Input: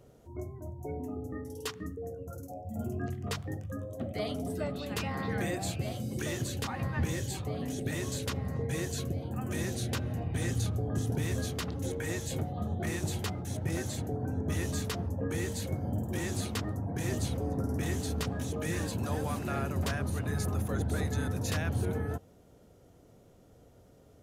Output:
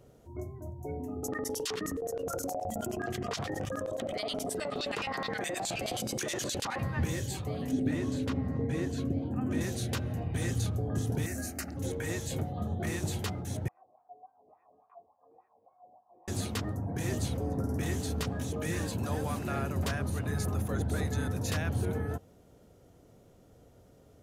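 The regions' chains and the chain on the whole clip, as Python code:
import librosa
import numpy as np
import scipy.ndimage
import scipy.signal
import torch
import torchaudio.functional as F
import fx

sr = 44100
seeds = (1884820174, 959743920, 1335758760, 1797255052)

y = fx.chain(x, sr, fx.filter_lfo_bandpass(shape='square', hz=9.5, low_hz=750.0, high_hz=5700.0, q=0.8),
    fx.env_flatten(amount_pct=100), at=(1.23, 6.79))
y = fx.chain(y, sr, fx.lowpass(hz=2100.0, slope=6),
    fx.peak_eq(hz=270.0, db=12.5, octaves=0.32), at=(7.71, 9.61))
y = fx.chain(y, sr, fx.high_shelf(hz=4400.0, db=6.5),
    fx.fixed_phaser(hz=690.0, stages=8), at=(11.26, 11.77))
y = fx.chain(y, sr, fx.formant_cascade(vowel='a'),
    fx.wah_lfo(hz=3.5, low_hz=380.0, high_hz=1800.0, q=2.9), at=(13.68, 16.28))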